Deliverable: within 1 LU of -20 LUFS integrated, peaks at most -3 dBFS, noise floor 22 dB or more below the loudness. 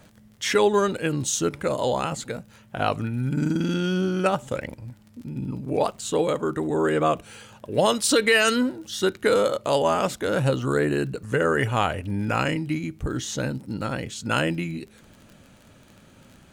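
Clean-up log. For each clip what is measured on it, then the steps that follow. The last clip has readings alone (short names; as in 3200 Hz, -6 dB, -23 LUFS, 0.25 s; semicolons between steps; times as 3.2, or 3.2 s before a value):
ticks 26/s; loudness -24.5 LUFS; peak -9.0 dBFS; loudness target -20.0 LUFS
-> de-click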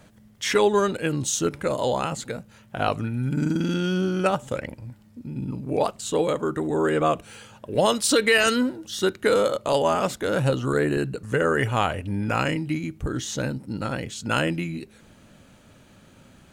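ticks 0.061/s; loudness -24.5 LUFS; peak -8.5 dBFS; loudness target -20.0 LUFS
-> gain +4.5 dB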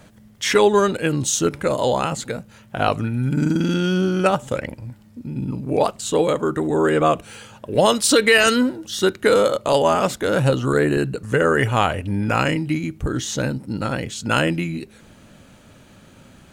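loudness -20.0 LUFS; peak -4.0 dBFS; noise floor -49 dBFS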